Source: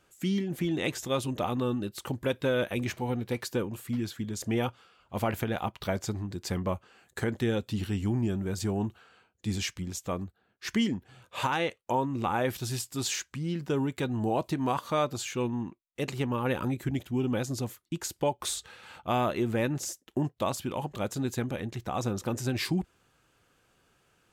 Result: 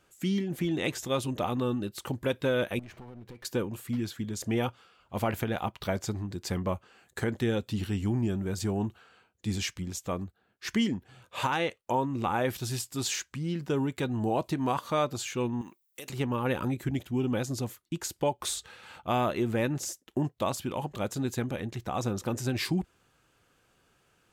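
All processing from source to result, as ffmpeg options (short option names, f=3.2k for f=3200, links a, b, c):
-filter_complex "[0:a]asettb=1/sr,asplit=3[a][b][c];[a]atrim=end=2.794[d];[b]atrim=start=2.79:end=3.45,asetpts=PTS-STARTPTS,afade=t=in:d=0.004:c=qsin,afade=t=out:st=0.656:d=0.004:c=qsin,highshelf=f=3.9k:g=-9.5,acompressor=threshold=-40dB:ratio=12:attack=3.2:release=140:knee=1:detection=peak,aeval=exprs='clip(val(0),-1,0.00355)':c=same[e];[c]atrim=start=3.446[f];[d][e]acrossfade=d=0.004:c1=hsin:c2=qsin[g];[g][f]acrossfade=d=0.004:c1=qsin:c2=hsin,asettb=1/sr,asplit=3[h][i][j];[h]atrim=end=15.614[k];[i]atrim=start=15.61:end=16.1,asetpts=PTS-STARTPTS,afade=t=in:d=0.004:c=qsin,afade=t=out:st=0.486:d=0.004:c=qsin,aemphasis=mode=production:type=riaa,acompressor=threshold=-39dB:ratio=5:attack=3.2:release=140:knee=1:detection=peak[l];[j]atrim=start=16.096[m];[k][l]acrossfade=d=0.004:c1=hsin:c2=qsin[n];[n][m]acrossfade=d=0.004:c1=qsin:c2=hsin"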